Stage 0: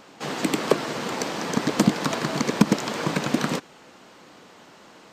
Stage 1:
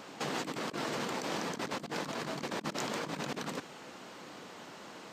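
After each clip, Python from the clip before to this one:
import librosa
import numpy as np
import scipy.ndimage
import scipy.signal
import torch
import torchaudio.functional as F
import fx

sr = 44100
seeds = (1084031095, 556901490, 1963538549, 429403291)

y = scipy.signal.sosfilt(scipy.signal.butter(2, 80.0, 'highpass', fs=sr, output='sos'), x)
y = fx.over_compress(y, sr, threshold_db=-33.0, ratio=-1.0)
y = F.gain(torch.from_numpy(y), -6.0).numpy()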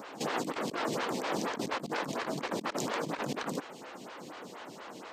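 y = fx.stagger_phaser(x, sr, hz=4.2)
y = F.gain(torch.from_numpy(y), 5.5).numpy()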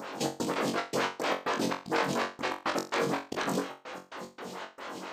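y = fx.step_gate(x, sr, bpm=113, pattern='xx.xxx.x.x.', floor_db=-60.0, edge_ms=4.5)
y = fx.room_flutter(y, sr, wall_m=3.7, rt60_s=0.29)
y = F.gain(torch.from_numpy(y), 3.5).numpy()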